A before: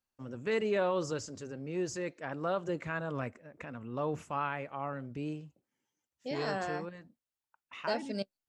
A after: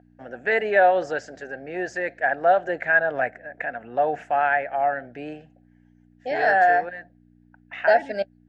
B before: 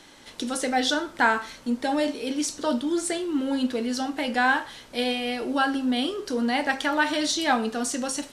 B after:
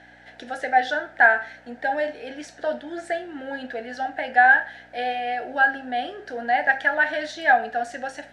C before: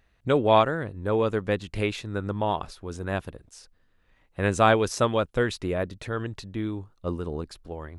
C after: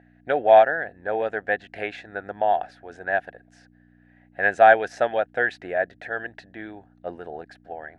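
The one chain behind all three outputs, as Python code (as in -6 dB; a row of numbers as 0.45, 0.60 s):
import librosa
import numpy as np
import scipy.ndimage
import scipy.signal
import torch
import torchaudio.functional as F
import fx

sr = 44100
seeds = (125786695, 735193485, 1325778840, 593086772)

y = fx.add_hum(x, sr, base_hz=60, snr_db=12)
y = fx.double_bandpass(y, sr, hz=1100.0, octaves=1.2)
y = y * 10.0 ** (-24 / 20.0) / np.sqrt(np.mean(np.square(y)))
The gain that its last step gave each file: +23.0, +10.5, +12.5 dB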